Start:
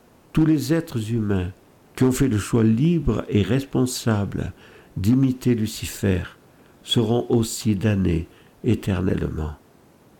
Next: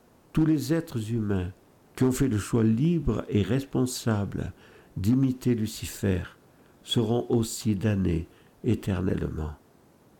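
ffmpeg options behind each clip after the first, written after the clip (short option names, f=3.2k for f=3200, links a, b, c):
-af "equalizer=f=2.6k:w=1.5:g=-2.5,volume=-5dB"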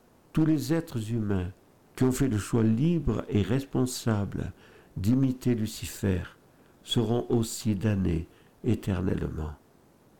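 -af "aeval=exprs='if(lt(val(0),0),0.708*val(0),val(0))':c=same"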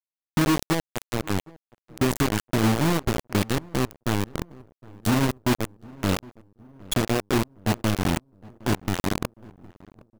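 -filter_complex "[0:a]acrusher=bits=3:mix=0:aa=0.000001,asplit=2[a][b];[b]adelay=763,lowpass=f=1.1k:p=1,volume=-22dB,asplit=2[c][d];[d]adelay=763,lowpass=f=1.1k:p=1,volume=0.54,asplit=2[e][f];[f]adelay=763,lowpass=f=1.1k:p=1,volume=0.54,asplit=2[g][h];[h]adelay=763,lowpass=f=1.1k:p=1,volume=0.54[i];[a][c][e][g][i]amix=inputs=5:normalize=0,acrusher=bits=8:mode=log:mix=0:aa=0.000001,volume=1dB"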